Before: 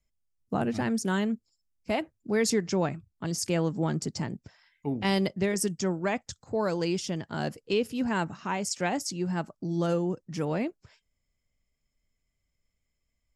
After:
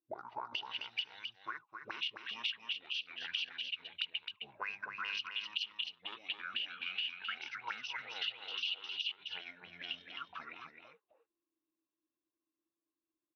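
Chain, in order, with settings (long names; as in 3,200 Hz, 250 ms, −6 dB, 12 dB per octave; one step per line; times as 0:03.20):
in parallel at −8 dB: soft clipping −29.5 dBFS, distortion −9 dB
on the sum: backwards echo 430 ms −6 dB
pitch shifter −11.5 semitones
RIAA equalisation recording
envelope filter 320–2,900 Hz, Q 11, up, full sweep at −30.5 dBFS
downward compressor 6 to 1, threshold −48 dBFS, peak gain reduction 18.5 dB
single-tap delay 263 ms −6.5 dB
level +11.5 dB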